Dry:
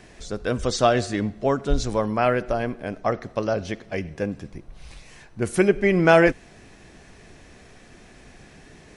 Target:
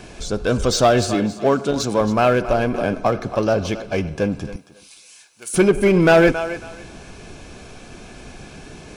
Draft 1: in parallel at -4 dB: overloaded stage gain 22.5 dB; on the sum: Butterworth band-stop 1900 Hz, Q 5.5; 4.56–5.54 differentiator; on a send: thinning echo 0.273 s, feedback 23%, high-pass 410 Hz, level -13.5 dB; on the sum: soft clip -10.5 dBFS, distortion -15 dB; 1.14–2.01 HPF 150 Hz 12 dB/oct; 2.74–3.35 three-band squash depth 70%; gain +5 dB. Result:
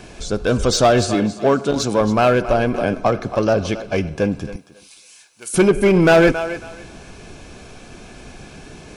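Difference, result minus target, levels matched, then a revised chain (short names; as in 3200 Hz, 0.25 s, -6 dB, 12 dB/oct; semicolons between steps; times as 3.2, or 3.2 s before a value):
overloaded stage: distortion -4 dB
in parallel at -4 dB: overloaded stage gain 32.5 dB; on the sum: Butterworth band-stop 1900 Hz, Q 5.5; 4.56–5.54 differentiator; on a send: thinning echo 0.273 s, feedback 23%, high-pass 410 Hz, level -13.5 dB; on the sum: soft clip -10.5 dBFS, distortion -16 dB; 1.14–2.01 HPF 150 Hz 12 dB/oct; 2.74–3.35 three-band squash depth 70%; gain +5 dB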